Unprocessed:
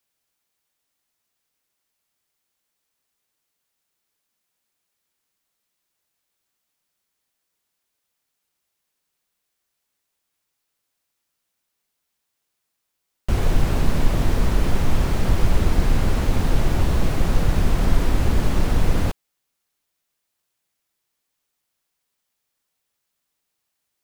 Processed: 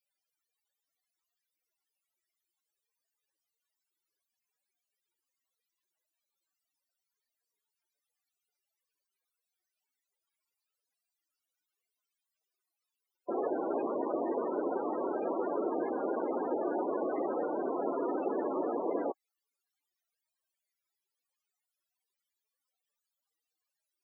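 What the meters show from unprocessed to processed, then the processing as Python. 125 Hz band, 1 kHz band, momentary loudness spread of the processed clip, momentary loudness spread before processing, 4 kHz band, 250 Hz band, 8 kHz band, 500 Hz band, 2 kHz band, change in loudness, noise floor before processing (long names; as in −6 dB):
below −35 dB, −4.0 dB, 1 LU, 2 LU, below −40 dB, −8.5 dB, below −40 dB, −1.0 dB, −18.0 dB, −10.5 dB, −78 dBFS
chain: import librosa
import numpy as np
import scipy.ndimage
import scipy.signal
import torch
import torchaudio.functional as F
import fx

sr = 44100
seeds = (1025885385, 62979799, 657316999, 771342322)

y = fx.spec_topn(x, sr, count=32)
y = scipy.signal.sosfilt(scipy.signal.butter(6, 310.0, 'highpass', fs=sr, output='sos'), y)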